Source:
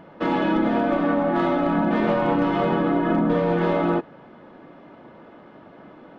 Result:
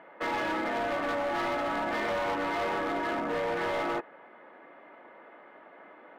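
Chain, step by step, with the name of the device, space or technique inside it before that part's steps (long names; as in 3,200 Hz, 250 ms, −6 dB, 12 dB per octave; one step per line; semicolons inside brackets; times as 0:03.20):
megaphone (band-pass filter 500–2,600 Hz; parametric band 2,000 Hz +8 dB 0.49 octaves; hard clipping −24.5 dBFS, distortion −10 dB)
level −3 dB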